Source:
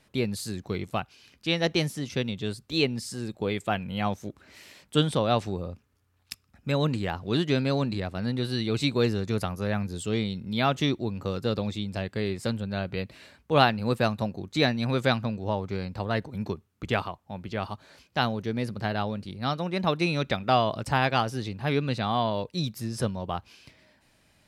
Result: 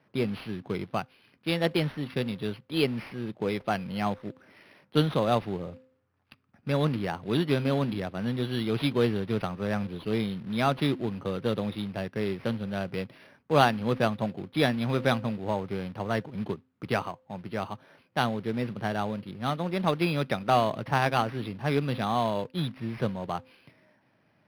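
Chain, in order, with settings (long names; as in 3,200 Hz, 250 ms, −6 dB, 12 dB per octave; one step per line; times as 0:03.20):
low-pass that shuts in the quiet parts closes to 2,300 Hz, open at −21 dBFS
high-pass filter 110 Hz 24 dB per octave
hum removal 259.3 Hz, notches 2
floating-point word with a short mantissa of 2 bits
linearly interpolated sample-rate reduction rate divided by 6×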